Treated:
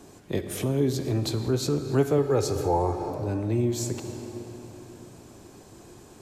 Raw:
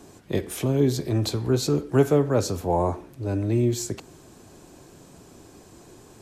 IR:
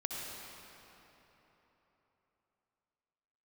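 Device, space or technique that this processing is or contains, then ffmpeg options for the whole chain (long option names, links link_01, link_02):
ducked reverb: -filter_complex "[0:a]asplit=3[link_01][link_02][link_03];[1:a]atrim=start_sample=2205[link_04];[link_02][link_04]afir=irnorm=-1:irlink=0[link_05];[link_03]apad=whole_len=274028[link_06];[link_05][link_06]sidechaincompress=threshold=-28dB:ratio=3:attack=16:release=215,volume=-3dB[link_07];[link_01][link_07]amix=inputs=2:normalize=0,asettb=1/sr,asplit=3[link_08][link_09][link_10];[link_08]atrim=end=2.184[link_11];[link_09]atrim=start=2.18:end=3.1,asetpts=PTS-STARTPTS,afade=type=in:duration=0.004:curve=qsin,afade=type=out:start_time=0.916:duration=0.004:curve=qsin,aecho=1:1:2.4:0.6,atrim=end_sample=40572[link_12];[link_10]atrim=start=3.096[link_13];[link_11][link_12]acrossfade=duration=0.004:curve1=hsin:curve2=qsin[link_14];[link_14][link_13]acrossfade=duration=0.004:curve1=qsin:curve2=hsin,volume=-5dB"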